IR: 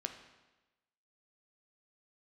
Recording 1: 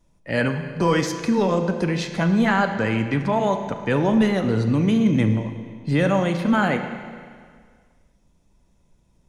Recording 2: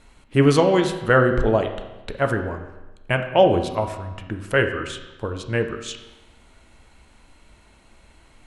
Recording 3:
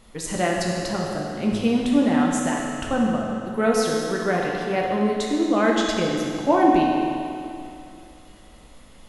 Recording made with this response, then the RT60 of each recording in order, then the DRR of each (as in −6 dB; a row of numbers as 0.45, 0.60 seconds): 2; 1.9, 1.1, 2.6 seconds; 7.0, 5.5, −2.5 decibels